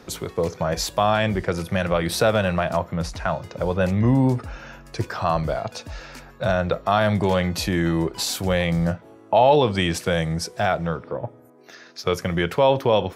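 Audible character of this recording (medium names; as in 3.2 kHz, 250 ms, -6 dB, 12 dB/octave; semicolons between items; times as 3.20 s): noise floor -48 dBFS; spectral tilt -5.5 dB/octave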